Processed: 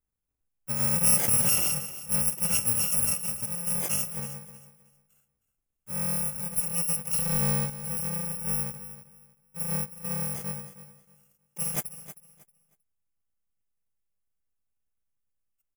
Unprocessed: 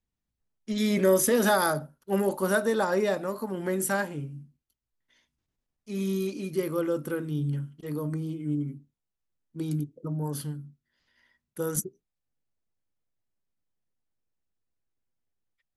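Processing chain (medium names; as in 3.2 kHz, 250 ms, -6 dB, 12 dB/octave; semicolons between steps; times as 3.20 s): bit-reversed sample order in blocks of 128 samples; peaking EQ 4.2 kHz -15 dB 0.63 oct; 7.13–7.70 s: power-law waveshaper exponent 0.5; feedback delay 315 ms, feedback 23%, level -14 dB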